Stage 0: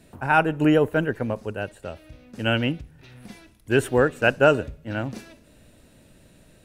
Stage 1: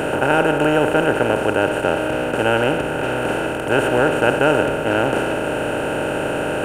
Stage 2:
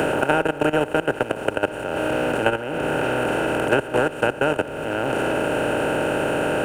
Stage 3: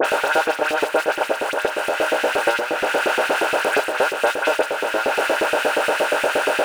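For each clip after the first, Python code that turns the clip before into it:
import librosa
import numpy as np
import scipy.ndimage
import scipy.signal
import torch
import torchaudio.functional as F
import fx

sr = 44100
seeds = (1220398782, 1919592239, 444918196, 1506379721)

y1 = fx.bin_compress(x, sr, power=0.2)
y1 = F.gain(torch.from_numpy(y1), -4.5).numpy()
y2 = fx.level_steps(y1, sr, step_db=16)
y2 = fx.dmg_noise_colour(y2, sr, seeds[0], colour='pink', level_db=-61.0)
y2 = fx.band_squash(y2, sr, depth_pct=100)
y2 = F.gain(torch.from_numpy(y2), -1.0).numpy()
y3 = fx.power_curve(y2, sr, exponent=0.5)
y3 = fx.dispersion(y3, sr, late='highs', ms=52.0, hz=2700.0)
y3 = fx.filter_lfo_highpass(y3, sr, shape='saw_up', hz=8.5, low_hz=370.0, high_hz=2400.0, q=1.5)
y3 = F.gain(torch.from_numpy(y3), -5.5).numpy()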